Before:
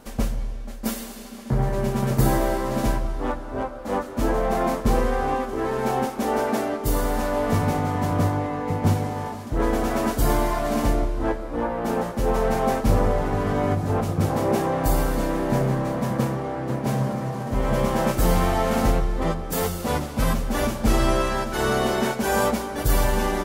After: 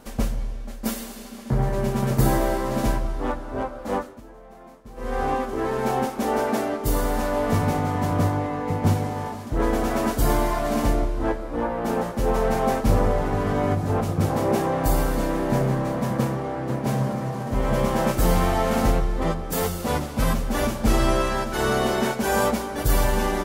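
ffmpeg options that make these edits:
-filter_complex "[0:a]asplit=3[a][b][c];[a]atrim=end=4.21,asetpts=PTS-STARTPTS,afade=t=out:st=3.95:d=0.26:silence=0.0707946[d];[b]atrim=start=4.21:end=4.96,asetpts=PTS-STARTPTS,volume=-23dB[e];[c]atrim=start=4.96,asetpts=PTS-STARTPTS,afade=t=in:d=0.26:silence=0.0707946[f];[d][e][f]concat=n=3:v=0:a=1"

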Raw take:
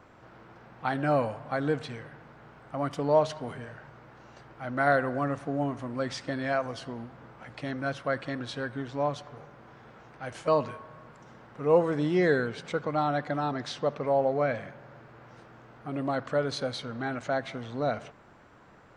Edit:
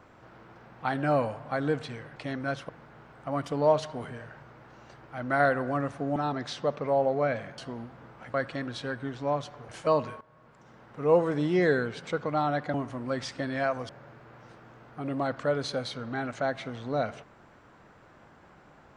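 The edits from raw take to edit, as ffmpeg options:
-filter_complex "[0:a]asplit=10[a][b][c][d][e][f][g][h][i][j];[a]atrim=end=2.162[k];[b]atrim=start=7.538:end=8.072[l];[c]atrim=start=2.158:end=5.632[m];[d]atrim=start=13.348:end=14.772[n];[e]atrim=start=6.778:end=7.542[o];[f]atrim=start=8.068:end=9.422[p];[g]atrim=start=10.298:end=10.82,asetpts=PTS-STARTPTS,afade=t=out:st=0.518:d=0.004:c=hsin:silence=0.188365[q];[h]atrim=start=10.82:end=13.352,asetpts=PTS-STARTPTS,afade=t=in:d=0.8:silence=0.188365[r];[i]atrim=start=5.628:end=6.782[s];[j]atrim=start=14.768[t];[k][l]acrossfade=d=0.004:c1=hsin:c2=hsin[u];[u][m]acrossfade=d=0.004:c1=hsin:c2=hsin[v];[v][n]acrossfade=d=0.004:c1=hsin:c2=hsin[w];[w][o]acrossfade=d=0.004:c1=hsin:c2=hsin[x];[x][p]acrossfade=d=0.004:c1=hsin:c2=hsin[y];[q][r]concat=n=2:v=0:a=1[z];[y][z]acrossfade=d=0.004:c1=hsin:c2=hsin[aa];[aa][s]acrossfade=d=0.004:c1=hsin:c2=hsin[ab];[ab][t]acrossfade=d=0.004:c1=hsin:c2=hsin"

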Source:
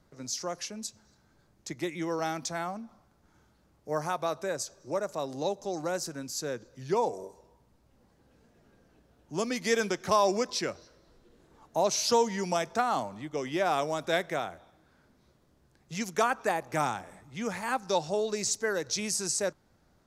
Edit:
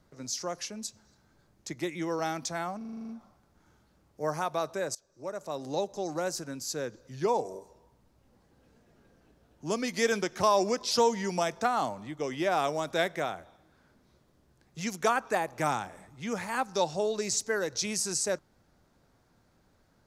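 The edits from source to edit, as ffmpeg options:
-filter_complex "[0:a]asplit=11[a][b][c][d][e][f][g][h][i][j][k];[a]atrim=end=2.812[l];[b]atrim=start=2.768:end=2.812[m];[c]atrim=start=2.768:end=2.812[n];[d]atrim=start=2.768:end=2.812[o];[e]atrim=start=2.768:end=2.812[p];[f]atrim=start=2.768:end=2.812[q];[g]atrim=start=2.768:end=2.812[r];[h]atrim=start=2.768:end=2.812[s];[i]atrim=start=2.768:end=4.63,asetpts=PTS-STARTPTS,afade=t=out:st=1.858:d=0.004:c=hsin:silence=0.1[t];[j]atrim=start=4.63:end=10.592,asetpts=PTS-STARTPTS,afade=t=in:d=0.78:silence=0.1[u];[k]atrim=start=12.048[v];[l][m]acrossfade=d=0.004:c1=hsin:c2=hsin[w];[w][n]acrossfade=d=0.004:c1=hsin:c2=hsin[x];[x][o]acrossfade=d=0.004:c1=hsin:c2=hsin[y];[y][p]acrossfade=d=0.004:c1=hsin:c2=hsin[z];[z][q]acrossfade=d=0.004:c1=hsin:c2=hsin[aa];[aa][r]acrossfade=d=0.004:c1=hsin:c2=hsin[ab];[ab][s]acrossfade=d=0.004:c1=hsin:c2=hsin[ac];[t][u]concat=n=2:v=0:a=1[ad];[ac][ad]acrossfade=d=0.004:c1=hsin:c2=hsin[ae];[ae][v]acrossfade=d=0.004:c1=hsin:c2=hsin"

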